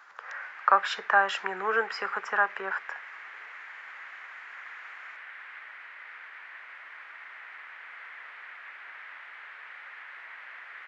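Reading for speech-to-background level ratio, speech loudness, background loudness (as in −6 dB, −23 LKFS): 16.5 dB, −27.0 LKFS, −43.5 LKFS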